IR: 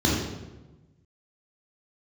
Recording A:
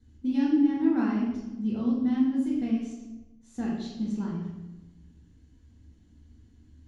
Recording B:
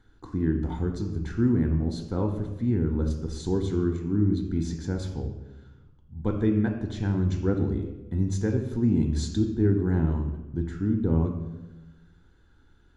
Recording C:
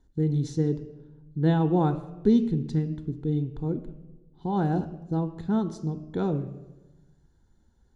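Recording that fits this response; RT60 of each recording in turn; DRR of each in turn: A; 1.1, 1.1, 1.1 s; -5.0, 4.0, 10.5 dB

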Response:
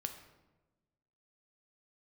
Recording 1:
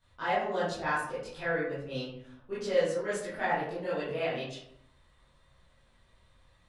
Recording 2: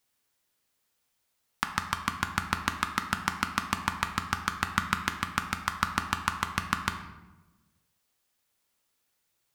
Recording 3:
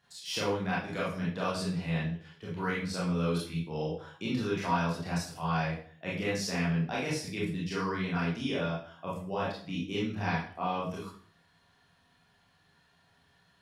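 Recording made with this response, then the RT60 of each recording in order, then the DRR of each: 2; 0.70, 1.1, 0.50 s; -12.5, 5.5, -7.0 dB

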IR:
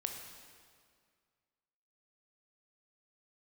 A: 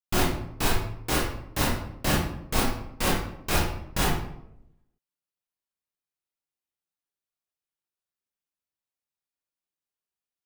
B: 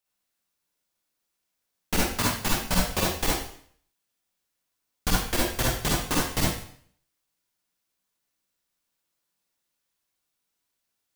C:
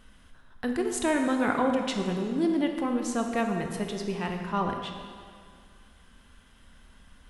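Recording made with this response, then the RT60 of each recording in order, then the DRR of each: C; 0.80, 0.60, 2.0 s; -5.5, -4.5, 3.0 dB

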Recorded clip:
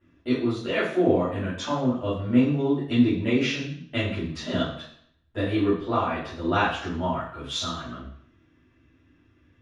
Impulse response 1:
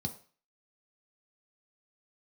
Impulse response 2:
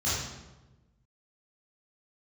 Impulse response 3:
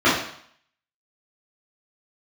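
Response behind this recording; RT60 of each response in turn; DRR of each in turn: 3; 0.40, 1.1, 0.60 s; 3.5, -11.0, -12.0 dB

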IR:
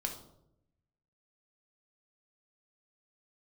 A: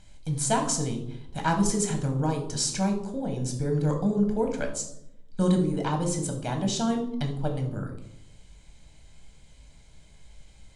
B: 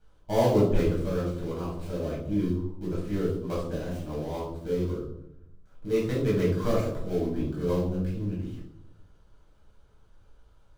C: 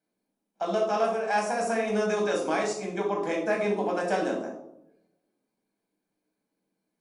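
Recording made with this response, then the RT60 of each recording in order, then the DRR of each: A; 0.80, 0.80, 0.80 s; 3.0, -7.5, -1.5 dB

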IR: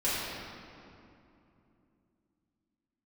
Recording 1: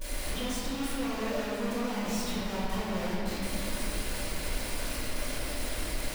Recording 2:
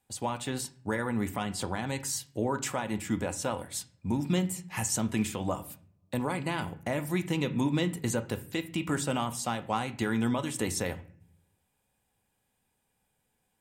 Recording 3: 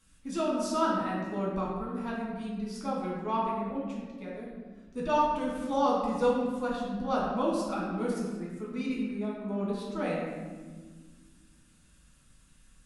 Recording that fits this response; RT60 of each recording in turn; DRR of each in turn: 1; 2.8, 0.50, 1.5 s; -12.5, 8.5, -5.0 dB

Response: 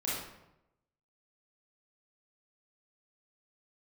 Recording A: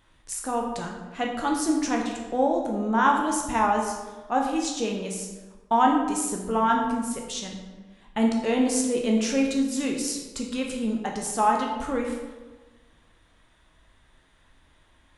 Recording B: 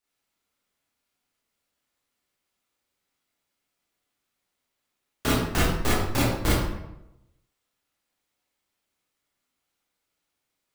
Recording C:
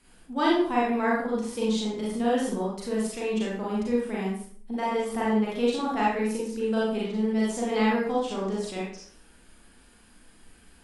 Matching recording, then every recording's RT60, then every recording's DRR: B; 1.3, 0.90, 0.50 s; 0.0, -8.0, -6.0 dB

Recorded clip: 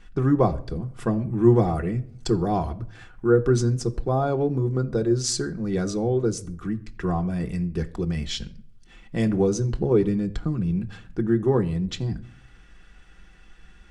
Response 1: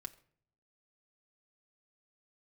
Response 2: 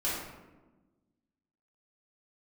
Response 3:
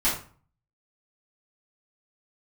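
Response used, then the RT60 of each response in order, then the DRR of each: 1; not exponential, 1.2 s, 0.40 s; 3.0, -9.5, -12.0 dB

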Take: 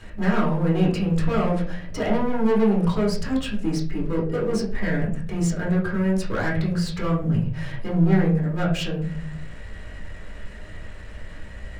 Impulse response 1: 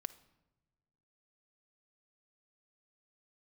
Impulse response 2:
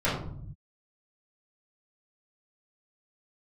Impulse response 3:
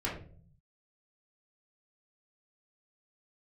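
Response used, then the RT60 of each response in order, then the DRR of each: 3; not exponential, 0.60 s, 0.45 s; 11.0, -11.5, -6.0 dB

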